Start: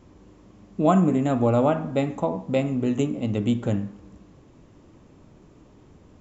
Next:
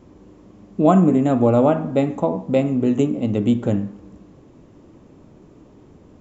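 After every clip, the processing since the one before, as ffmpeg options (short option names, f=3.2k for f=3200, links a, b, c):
-af "equalizer=f=340:t=o:w=2.8:g=6"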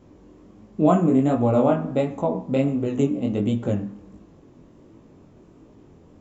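-af "flanger=delay=18:depth=6.2:speed=1.4"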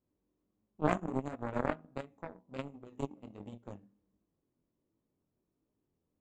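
-af "aeval=exprs='0.562*(cos(1*acos(clip(val(0)/0.562,-1,1)))-cos(1*PI/2))+0.178*(cos(3*acos(clip(val(0)/0.562,-1,1)))-cos(3*PI/2))':c=same,volume=-7dB"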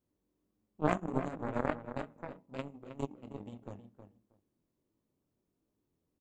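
-filter_complex "[0:a]asplit=2[a][b];[b]adelay=316,lowpass=f=2.2k:p=1,volume=-9dB,asplit=2[c][d];[d]adelay=316,lowpass=f=2.2k:p=1,volume=0.16[e];[a][c][e]amix=inputs=3:normalize=0"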